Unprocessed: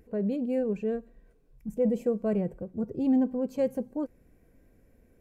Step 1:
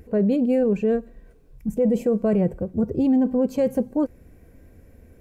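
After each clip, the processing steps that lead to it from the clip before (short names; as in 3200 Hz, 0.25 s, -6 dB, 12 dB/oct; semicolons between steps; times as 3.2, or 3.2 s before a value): bell 79 Hz +9.5 dB 0.52 oct; in parallel at -2 dB: negative-ratio compressor -28 dBFS, ratio -0.5; on the sum: gain +3.5 dB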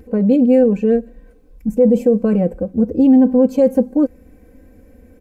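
bell 370 Hz +4.5 dB 2.3 oct; comb 3.9 ms, depth 76%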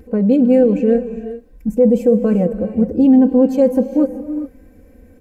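non-linear reverb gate 0.44 s rising, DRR 10.5 dB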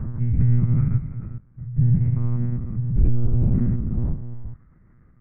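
stepped spectrum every 0.2 s; mistuned SSB -340 Hz 150–2400 Hz; monotone LPC vocoder at 8 kHz 120 Hz; gain -3 dB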